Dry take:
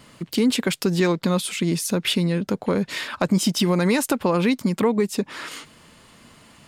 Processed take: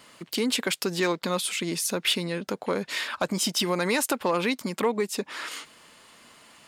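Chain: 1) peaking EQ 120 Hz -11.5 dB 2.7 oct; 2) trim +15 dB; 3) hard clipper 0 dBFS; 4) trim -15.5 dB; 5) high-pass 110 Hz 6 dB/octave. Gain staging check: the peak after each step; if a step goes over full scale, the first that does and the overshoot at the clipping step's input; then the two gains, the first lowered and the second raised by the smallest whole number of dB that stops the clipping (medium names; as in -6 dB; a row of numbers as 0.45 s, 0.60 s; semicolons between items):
-7.5 dBFS, +7.5 dBFS, 0.0 dBFS, -15.5 dBFS, -13.5 dBFS; step 2, 7.5 dB; step 2 +7 dB, step 4 -7.5 dB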